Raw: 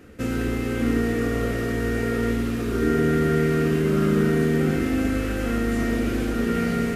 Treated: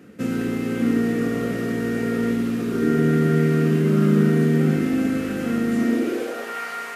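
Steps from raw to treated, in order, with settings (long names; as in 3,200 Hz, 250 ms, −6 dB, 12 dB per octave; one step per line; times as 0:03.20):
high-pass filter sweep 170 Hz → 960 Hz, 0:05.73–0:06.61
level −1.5 dB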